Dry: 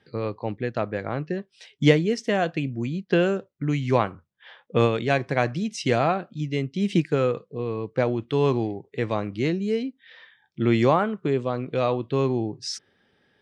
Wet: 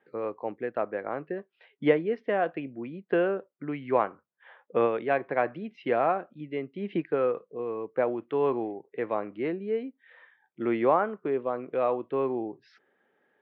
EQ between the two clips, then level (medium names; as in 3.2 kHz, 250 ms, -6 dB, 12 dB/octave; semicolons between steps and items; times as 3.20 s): high-pass 380 Hz 12 dB/octave; low-pass 2.2 kHz 12 dB/octave; distance through air 390 m; 0.0 dB